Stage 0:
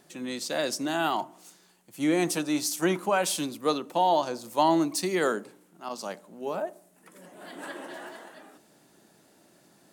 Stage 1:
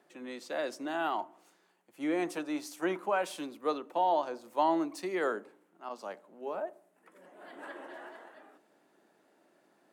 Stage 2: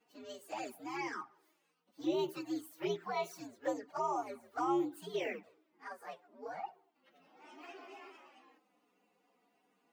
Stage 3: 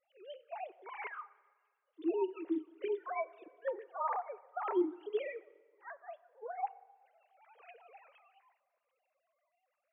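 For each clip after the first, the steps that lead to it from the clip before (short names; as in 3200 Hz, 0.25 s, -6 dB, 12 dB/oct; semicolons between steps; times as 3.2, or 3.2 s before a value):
three-band isolator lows -19 dB, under 250 Hz, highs -13 dB, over 2700 Hz; gain -4.5 dB
inharmonic rescaling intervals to 123%; envelope flanger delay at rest 4.2 ms, full sweep at -30 dBFS
sine-wave speech; plate-style reverb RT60 1.7 s, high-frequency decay 0.65×, DRR 19 dB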